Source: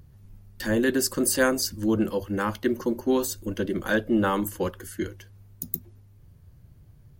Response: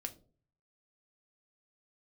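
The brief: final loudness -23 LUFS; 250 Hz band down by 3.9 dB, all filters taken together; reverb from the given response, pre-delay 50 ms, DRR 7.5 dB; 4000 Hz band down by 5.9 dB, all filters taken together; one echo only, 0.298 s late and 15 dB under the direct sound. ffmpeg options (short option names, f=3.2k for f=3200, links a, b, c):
-filter_complex "[0:a]equalizer=f=250:t=o:g=-5,equalizer=f=4k:t=o:g=-8,aecho=1:1:298:0.178,asplit=2[a][b];[1:a]atrim=start_sample=2205,adelay=50[c];[b][c]afir=irnorm=-1:irlink=0,volume=-5.5dB[d];[a][d]amix=inputs=2:normalize=0,volume=4.5dB"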